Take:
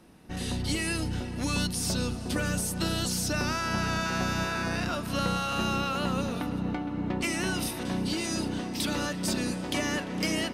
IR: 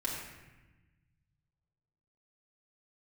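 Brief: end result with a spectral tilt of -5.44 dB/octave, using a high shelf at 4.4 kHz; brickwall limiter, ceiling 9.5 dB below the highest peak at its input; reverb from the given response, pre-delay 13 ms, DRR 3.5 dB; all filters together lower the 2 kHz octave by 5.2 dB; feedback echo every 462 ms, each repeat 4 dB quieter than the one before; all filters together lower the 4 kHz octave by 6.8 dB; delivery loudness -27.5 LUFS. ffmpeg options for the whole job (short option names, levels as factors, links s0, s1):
-filter_complex "[0:a]equalizer=f=2000:t=o:g=-5,equalizer=f=4000:t=o:g=-4,highshelf=f=4400:g=-6,alimiter=level_in=1.33:limit=0.0631:level=0:latency=1,volume=0.75,aecho=1:1:462|924|1386|1848|2310|2772|3234|3696|4158:0.631|0.398|0.25|0.158|0.0994|0.0626|0.0394|0.0249|0.0157,asplit=2[s0][s1];[1:a]atrim=start_sample=2205,adelay=13[s2];[s1][s2]afir=irnorm=-1:irlink=0,volume=0.447[s3];[s0][s3]amix=inputs=2:normalize=0,volume=1.5"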